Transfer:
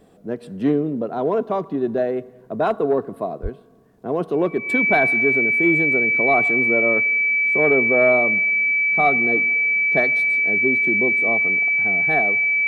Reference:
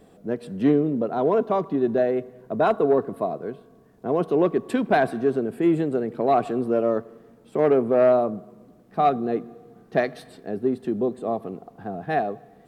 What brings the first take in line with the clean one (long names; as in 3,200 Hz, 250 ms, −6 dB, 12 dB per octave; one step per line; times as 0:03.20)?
notch filter 2,300 Hz, Q 30
0:03.42–0:03.54: high-pass filter 140 Hz 24 dB per octave